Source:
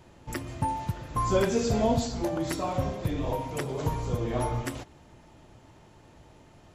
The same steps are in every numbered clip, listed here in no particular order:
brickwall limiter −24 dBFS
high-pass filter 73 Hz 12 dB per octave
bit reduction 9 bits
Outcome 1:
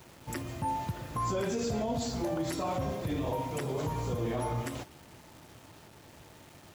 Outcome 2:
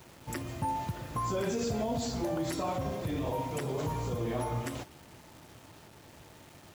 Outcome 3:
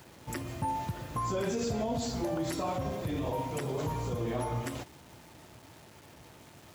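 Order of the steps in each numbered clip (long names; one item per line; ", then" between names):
high-pass filter, then bit reduction, then brickwall limiter
brickwall limiter, then high-pass filter, then bit reduction
bit reduction, then brickwall limiter, then high-pass filter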